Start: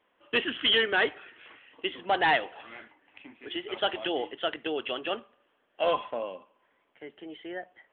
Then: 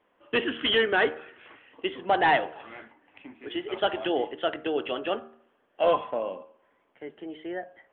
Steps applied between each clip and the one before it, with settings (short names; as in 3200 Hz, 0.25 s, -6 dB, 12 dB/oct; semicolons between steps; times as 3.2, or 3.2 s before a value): high shelf 2200 Hz -11 dB; de-hum 77.81 Hz, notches 22; gain +5 dB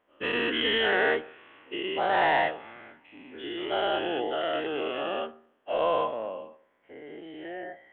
spectral dilation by 0.24 s; gain -8.5 dB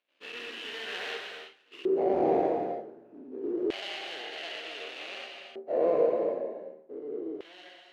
median filter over 41 samples; non-linear reverb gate 0.36 s flat, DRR 1 dB; LFO band-pass square 0.27 Hz 400–3000 Hz; gain +8 dB